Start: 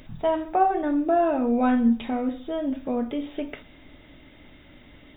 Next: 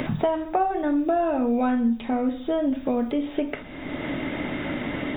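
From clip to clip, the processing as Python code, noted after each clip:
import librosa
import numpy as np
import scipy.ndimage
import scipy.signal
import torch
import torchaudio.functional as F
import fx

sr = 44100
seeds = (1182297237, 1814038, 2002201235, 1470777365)

y = fx.band_squash(x, sr, depth_pct=100)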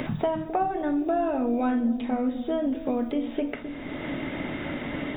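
y = fx.echo_wet_lowpass(x, sr, ms=262, feedback_pct=50, hz=470.0, wet_db=-9.0)
y = y * librosa.db_to_amplitude(-3.0)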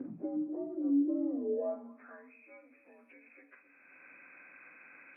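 y = fx.partial_stretch(x, sr, pct=86)
y = fx.filter_sweep_bandpass(y, sr, from_hz=300.0, to_hz=2700.0, start_s=1.35, end_s=2.38, q=5.5)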